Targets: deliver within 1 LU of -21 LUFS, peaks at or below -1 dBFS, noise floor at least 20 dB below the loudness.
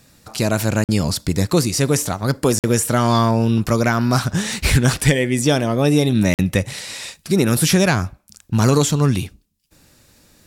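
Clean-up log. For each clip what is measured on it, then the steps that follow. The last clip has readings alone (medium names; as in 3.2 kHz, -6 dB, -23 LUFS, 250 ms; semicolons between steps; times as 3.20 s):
dropouts 3; longest dropout 48 ms; loudness -18.0 LUFS; peak level -2.5 dBFS; loudness target -21.0 LUFS
-> interpolate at 0.84/2.59/6.34 s, 48 ms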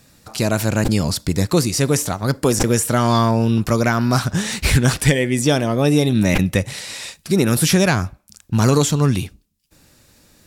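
dropouts 0; loudness -18.0 LUFS; peak level -2.5 dBFS; loudness target -21.0 LUFS
-> trim -3 dB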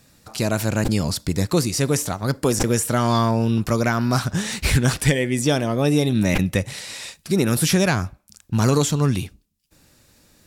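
loudness -21.0 LUFS; peak level -5.5 dBFS; noise floor -63 dBFS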